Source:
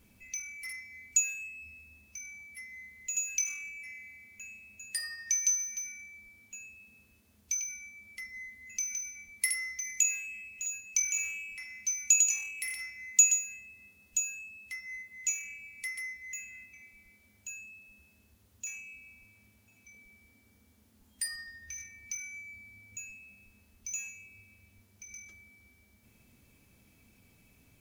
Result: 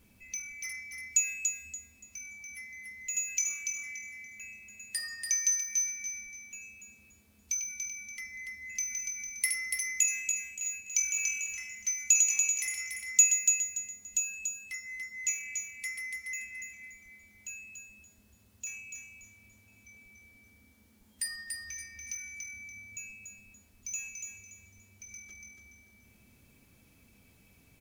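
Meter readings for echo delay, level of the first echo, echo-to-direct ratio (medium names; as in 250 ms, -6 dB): 287 ms, -5.0 dB, -4.5 dB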